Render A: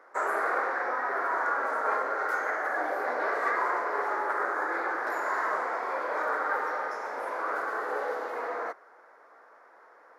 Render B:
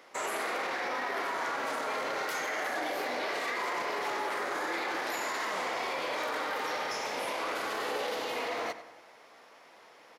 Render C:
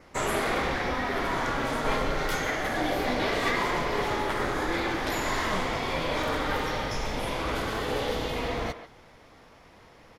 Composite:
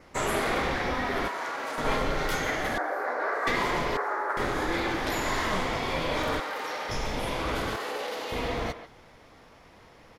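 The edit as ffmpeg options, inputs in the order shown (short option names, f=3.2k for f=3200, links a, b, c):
-filter_complex "[1:a]asplit=3[a][b][c];[0:a]asplit=2[d][e];[2:a]asplit=6[f][g][h][i][j][k];[f]atrim=end=1.282[l];[a]atrim=start=1.278:end=1.782[m];[g]atrim=start=1.778:end=2.782[n];[d]atrim=start=2.778:end=3.472[o];[h]atrim=start=3.468:end=3.972[p];[e]atrim=start=3.968:end=4.372[q];[i]atrim=start=4.368:end=6.402[r];[b]atrim=start=6.398:end=6.892[s];[j]atrim=start=6.888:end=7.762[t];[c]atrim=start=7.758:end=8.322[u];[k]atrim=start=8.318[v];[l][m]acrossfade=d=0.004:c1=hsin:c2=hsin[w];[w][n]acrossfade=d=0.004:c1=hsin:c2=hsin[x];[x][o]acrossfade=d=0.004:c1=hsin:c2=hsin[y];[y][p]acrossfade=d=0.004:c1=hsin:c2=hsin[z];[z][q]acrossfade=d=0.004:c1=hsin:c2=hsin[aa];[aa][r]acrossfade=d=0.004:c1=hsin:c2=hsin[ab];[ab][s]acrossfade=d=0.004:c1=hsin:c2=hsin[ac];[ac][t]acrossfade=d=0.004:c1=hsin:c2=hsin[ad];[ad][u]acrossfade=d=0.004:c1=hsin:c2=hsin[ae];[ae][v]acrossfade=d=0.004:c1=hsin:c2=hsin"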